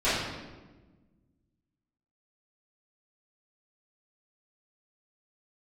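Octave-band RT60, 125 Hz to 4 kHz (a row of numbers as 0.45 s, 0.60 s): 2.1 s, 2.0 s, 1.4 s, 1.1 s, 1.0 s, 0.85 s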